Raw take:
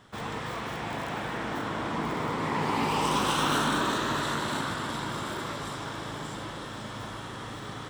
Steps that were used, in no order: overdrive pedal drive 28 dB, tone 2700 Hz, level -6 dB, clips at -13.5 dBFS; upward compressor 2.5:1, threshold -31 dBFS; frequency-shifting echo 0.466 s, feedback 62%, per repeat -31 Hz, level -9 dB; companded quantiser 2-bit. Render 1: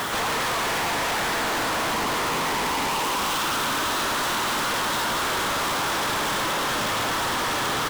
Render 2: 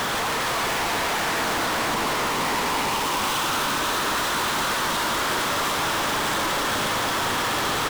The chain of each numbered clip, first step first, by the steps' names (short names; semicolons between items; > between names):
frequency-shifting echo > overdrive pedal > upward compressor > companded quantiser; upward compressor > overdrive pedal > companded quantiser > frequency-shifting echo